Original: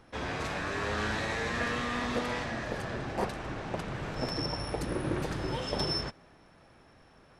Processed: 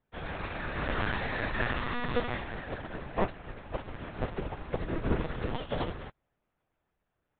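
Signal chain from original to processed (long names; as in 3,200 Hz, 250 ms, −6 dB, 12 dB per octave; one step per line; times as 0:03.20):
soft clipping −22 dBFS, distortion −23 dB
linear-prediction vocoder at 8 kHz pitch kept
expander for the loud parts 2.5 to 1, over −49 dBFS
level +7 dB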